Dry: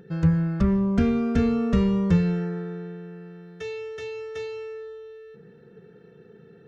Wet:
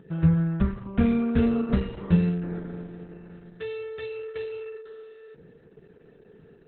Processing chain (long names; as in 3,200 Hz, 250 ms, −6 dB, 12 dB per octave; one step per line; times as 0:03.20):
hum removal 97.79 Hz, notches 12
Opus 8 kbit/s 48,000 Hz